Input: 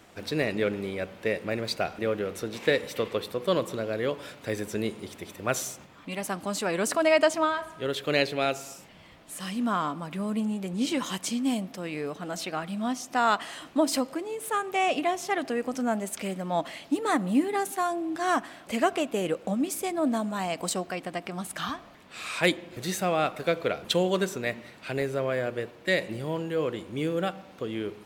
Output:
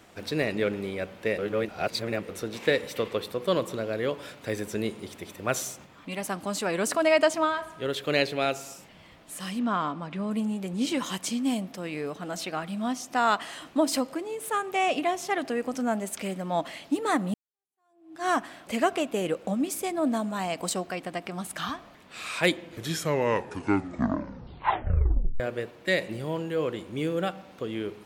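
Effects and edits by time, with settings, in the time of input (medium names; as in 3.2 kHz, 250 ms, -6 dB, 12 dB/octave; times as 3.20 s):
1.38–2.29 s: reverse
9.59–10.31 s: low-pass 4.9 kHz
17.34–18.26 s: fade in exponential
22.60 s: tape stop 2.80 s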